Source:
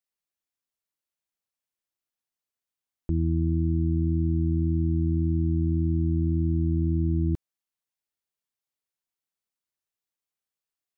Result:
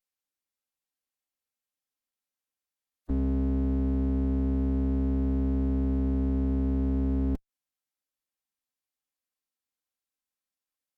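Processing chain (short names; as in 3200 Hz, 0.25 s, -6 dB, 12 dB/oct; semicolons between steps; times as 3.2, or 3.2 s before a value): minimum comb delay 3.1 ms; formant-preserving pitch shift -3.5 st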